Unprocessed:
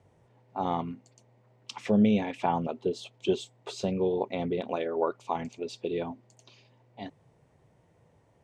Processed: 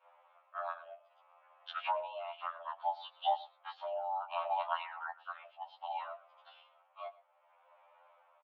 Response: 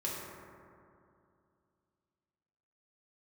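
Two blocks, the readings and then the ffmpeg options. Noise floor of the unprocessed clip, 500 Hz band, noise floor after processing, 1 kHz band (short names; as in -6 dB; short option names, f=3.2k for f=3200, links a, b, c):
-65 dBFS, -12.5 dB, -70 dBFS, -1.5 dB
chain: -filter_complex "[0:a]highpass=f=160:t=q:w=0.5412,highpass=f=160:t=q:w=1.307,lowpass=f=2.9k:t=q:w=0.5176,lowpass=f=2.9k:t=q:w=0.7071,lowpass=f=2.9k:t=q:w=1.932,afreqshift=400,acompressor=threshold=-31dB:ratio=6,adynamicequalizer=threshold=0.00447:dfrequency=780:dqfactor=0.74:tfrequency=780:tqfactor=0.74:attack=5:release=100:ratio=0.375:range=1.5:mode=cutabove:tftype=bell,afreqshift=14,asplit=2[a][b];[b]adelay=116.6,volume=-19dB,highshelf=f=4k:g=-2.62[c];[a][c]amix=inputs=2:normalize=0,tremolo=f=0.63:d=0.66,afftfilt=real='re*2*eq(mod(b,4),0)':imag='im*2*eq(mod(b,4),0)':win_size=2048:overlap=0.75,volume=5dB"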